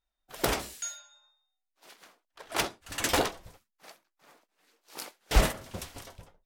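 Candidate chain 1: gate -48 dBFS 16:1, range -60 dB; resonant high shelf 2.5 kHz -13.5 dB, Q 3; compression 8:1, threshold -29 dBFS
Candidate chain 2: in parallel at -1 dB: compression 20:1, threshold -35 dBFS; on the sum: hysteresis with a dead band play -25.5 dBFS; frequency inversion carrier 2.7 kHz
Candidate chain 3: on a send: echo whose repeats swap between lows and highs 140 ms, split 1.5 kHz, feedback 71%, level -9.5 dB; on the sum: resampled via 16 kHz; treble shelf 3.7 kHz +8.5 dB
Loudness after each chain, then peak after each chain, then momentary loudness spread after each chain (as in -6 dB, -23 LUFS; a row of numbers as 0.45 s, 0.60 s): -38.0 LUFS, -27.5 LUFS, -29.5 LUFS; -17.0 dBFS, -5.0 dBFS, -8.5 dBFS; 17 LU, 23 LU, 19 LU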